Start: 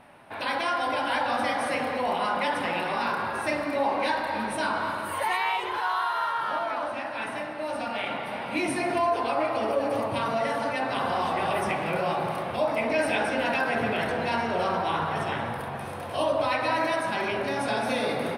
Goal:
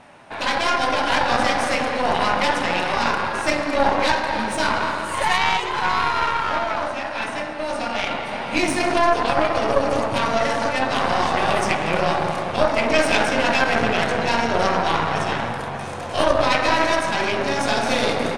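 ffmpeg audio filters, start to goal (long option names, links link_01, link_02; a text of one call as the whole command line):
ffmpeg -i in.wav -af "acontrast=53,lowpass=frequency=6900:width_type=q:width=3.6,aeval=exprs='0.398*(cos(1*acos(clip(val(0)/0.398,-1,1)))-cos(1*PI/2))+0.158*(cos(2*acos(clip(val(0)/0.398,-1,1)))-cos(2*PI/2))+0.0447*(cos(3*acos(clip(val(0)/0.398,-1,1)))-cos(3*PI/2))+0.00501*(cos(6*acos(clip(val(0)/0.398,-1,1)))-cos(6*PI/2))':channel_layout=same,volume=2.5dB" out.wav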